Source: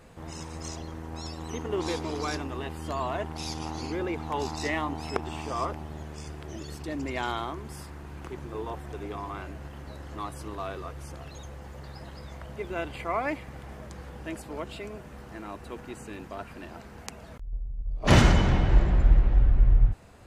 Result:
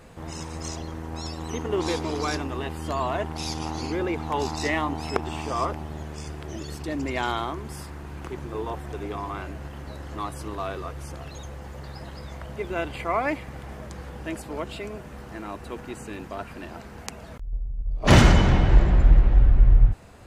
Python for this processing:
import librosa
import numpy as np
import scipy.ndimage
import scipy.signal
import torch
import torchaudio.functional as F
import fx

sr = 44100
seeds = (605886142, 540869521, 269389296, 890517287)

y = np.clip(x, -10.0 ** (-10.5 / 20.0), 10.0 ** (-10.5 / 20.0))
y = y * librosa.db_to_amplitude(4.0)